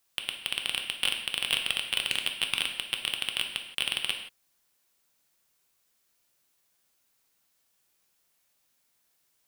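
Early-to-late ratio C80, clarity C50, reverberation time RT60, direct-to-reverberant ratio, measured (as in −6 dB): 9.5 dB, 7.0 dB, non-exponential decay, 3.5 dB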